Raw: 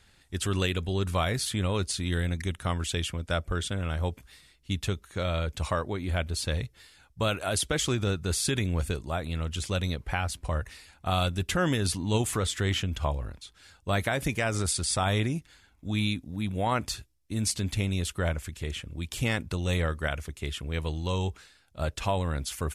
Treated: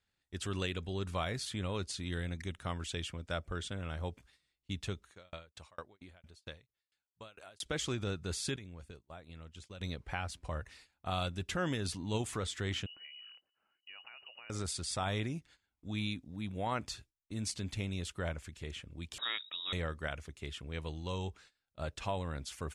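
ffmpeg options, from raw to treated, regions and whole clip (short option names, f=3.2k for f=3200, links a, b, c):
-filter_complex "[0:a]asettb=1/sr,asplit=3[a][b][c];[a]atrim=end=5.104[d];[b]atrim=start=5.1:end=7.66,asetpts=PTS-STARTPTS,afade=t=in:d=0.004:c=qsin,afade=t=out:st=2.556:d=0.004:c=qsin,lowshelf=f=390:g=-7,aeval=exprs='val(0)*pow(10,-30*if(lt(mod(4.4*n/s,1),2*abs(4.4)/1000),1-mod(4.4*n/s,1)/(2*abs(4.4)/1000),(mod(4.4*n/s,1)-2*abs(4.4)/1000)/(1-2*abs(4.4)/1000))/20)':c=same[e];[c]atrim=start=7.656[f];[d][e]acrossfade=d=0.004:c1=hsin:c2=qsin[g];[g][f]acrossfade=d=0.004:c1=qsin:c2=hsin,asettb=1/sr,asplit=3[h][i][j];[h]atrim=end=8.564[k];[i]atrim=start=8.56:end=9.81,asetpts=PTS-STARTPTS,afade=t=in:d=0.004:c=qsin,afade=t=out:st=1.246:d=0.004:c=qsin,agate=range=-33dB:threshold=-27dB:ratio=3:release=100:detection=peak,acompressor=threshold=-36dB:ratio=6:attack=3.2:release=140:knee=1:detection=peak[l];[j]atrim=start=9.806[m];[k][l]acrossfade=d=0.004:c1=hsin:c2=qsin[n];[n][m]acrossfade=d=0.004:c1=qsin:c2=hsin,asettb=1/sr,asplit=3[o][p][q];[o]atrim=end=12.864[r];[p]atrim=start=12.86:end=14.5,asetpts=PTS-STARTPTS,afade=t=in:d=0.004:c=qsin,afade=t=out:st=1.636:d=0.004:c=qsin,acompressor=threshold=-42dB:ratio=6:attack=3.2:release=140:knee=1:detection=peak,lowpass=f=2.6k:t=q:w=0.5098,lowpass=f=2.6k:t=q:w=0.6013,lowpass=f=2.6k:t=q:w=0.9,lowpass=f=2.6k:t=q:w=2.563,afreqshift=-3000[s];[q]atrim=start=14.496[t];[r][s]acrossfade=d=0.004:c1=hsin:c2=qsin[u];[u][t]acrossfade=d=0.004:c1=qsin:c2=hsin,asettb=1/sr,asplit=3[v][w][x];[v]atrim=end=19.184[y];[w]atrim=start=19.18:end=19.73,asetpts=PTS-STARTPTS,afade=t=in:d=0.004:c=qsin,afade=t=out:st=0.546:d=0.004:c=qsin,highpass=f=160:p=1,lowpass=f=3.3k:t=q:w=0.5098,lowpass=f=3.3k:t=q:w=0.6013,lowpass=f=3.3k:t=q:w=0.9,lowpass=f=3.3k:t=q:w=2.563,afreqshift=-3900[z];[x]atrim=start=19.726[aa];[y][z]acrossfade=d=0.004:c1=hsin:c2=qsin[ab];[ab][aa]acrossfade=d=0.004:c1=qsin:c2=hsin,lowpass=8.3k,agate=range=-14dB:threshold=-50dB:ratio=16:detection=peak,lowshelf=f=65:g=-6.5,volume=-8dB"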